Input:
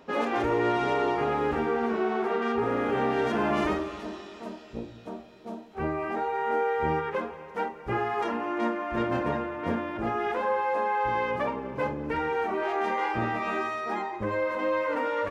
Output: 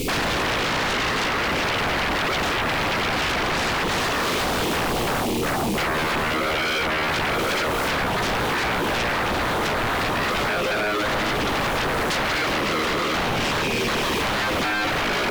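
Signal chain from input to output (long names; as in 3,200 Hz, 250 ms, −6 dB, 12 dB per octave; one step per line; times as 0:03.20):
high-shelf EQ 3,800 Hz −7.5 dB
echo with a time of its own for lows and highs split 350 Hz, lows 102 ms, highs 357 ms, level −4 dB
background noise pink −55 dBFS
downward compressor 16 to 1, threshold −31 dBFS, peak gain reduction 12.5 dB
linear-phase brick-wall band-stop 530–2,100 Hz
sine wavefolder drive 20 dB, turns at −24.5 dBFS
level +4.5 dB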